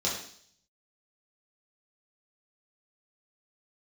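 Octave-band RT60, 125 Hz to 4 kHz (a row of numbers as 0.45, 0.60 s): 0.75, 0.65, 0.60, 0.55, 0.60, 0.75 s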